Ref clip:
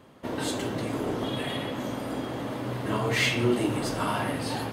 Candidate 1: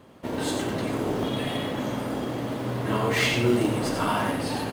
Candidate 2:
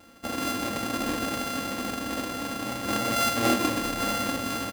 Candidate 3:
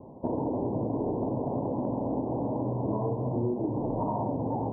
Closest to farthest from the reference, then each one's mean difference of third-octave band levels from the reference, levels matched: 1, 2, 3; 1.5, 7.0, 16.0 dB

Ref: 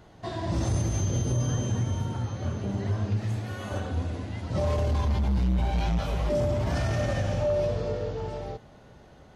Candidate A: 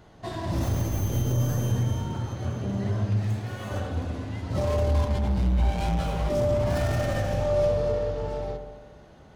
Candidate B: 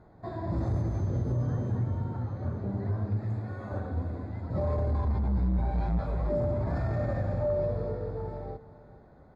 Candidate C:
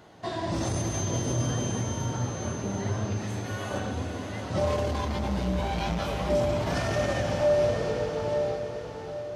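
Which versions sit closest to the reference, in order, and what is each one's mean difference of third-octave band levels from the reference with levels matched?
A, C, B; 2.0, 4.0, 5.5 dB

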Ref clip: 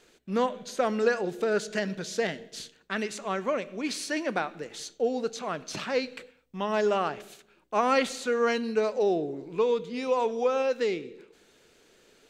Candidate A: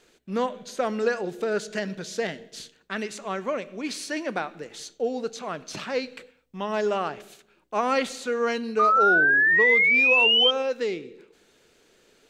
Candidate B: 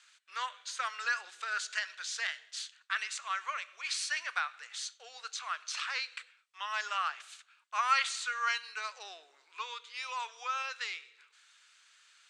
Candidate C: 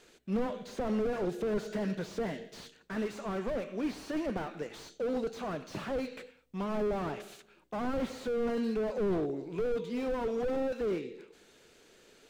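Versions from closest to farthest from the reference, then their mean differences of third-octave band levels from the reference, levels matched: A, C, B; 3.5, 6.0, 11.0 dB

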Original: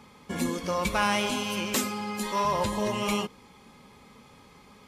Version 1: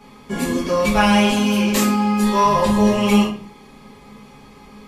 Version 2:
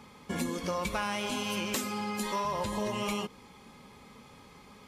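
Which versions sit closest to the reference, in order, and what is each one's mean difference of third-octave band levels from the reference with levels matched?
2, 1; 3.0, 4.5 dB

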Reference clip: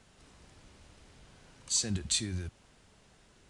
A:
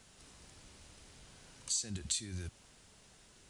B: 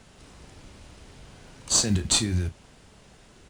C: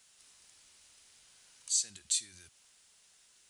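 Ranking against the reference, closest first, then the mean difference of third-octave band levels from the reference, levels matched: B, A, C; 2.0, 5.5, 10.0 dB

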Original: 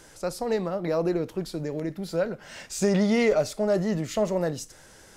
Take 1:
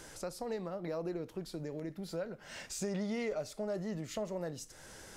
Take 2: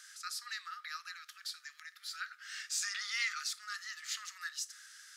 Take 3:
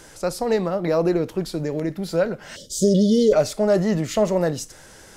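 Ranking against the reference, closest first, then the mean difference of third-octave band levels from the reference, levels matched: 3, 1, 2; 1.0, 3.5, 20.0 dB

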